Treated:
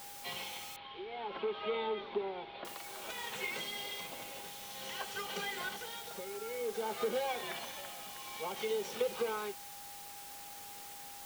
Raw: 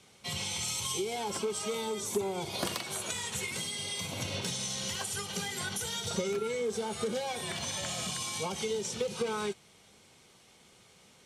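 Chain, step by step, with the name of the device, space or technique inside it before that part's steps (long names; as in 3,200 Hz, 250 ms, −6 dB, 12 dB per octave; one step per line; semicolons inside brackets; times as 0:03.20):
shortwave radio (band-pass filter 350–3,000 Hz; amplitude tremolo 0.56 Hz, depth 73%; steady tone 810 Hz −53 dBFS; white noise bed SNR 9 dB)
0:00.76–0:02.65: Butterworth low-pass 3,900 Hz 48 dB per octave
level +1 dB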